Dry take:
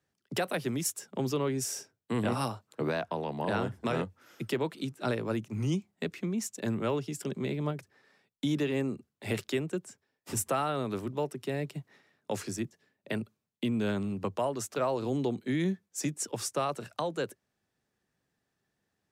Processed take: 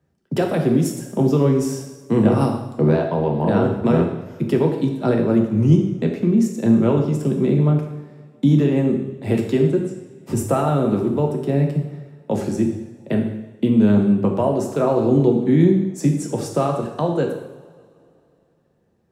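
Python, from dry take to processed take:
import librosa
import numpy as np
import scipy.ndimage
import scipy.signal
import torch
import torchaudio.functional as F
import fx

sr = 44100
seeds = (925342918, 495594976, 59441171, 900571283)

y = fx.tilt_shelf(x, sr, db=8.5, hz=910.0)
y = fx.rev_double_slope(y, sr, seeds[0], early_s=0.87, late_s=3.1, knee_db=-21, drr_db=1.5)
y = F.gain(torch.from_numpy(y), 6.5).numpy()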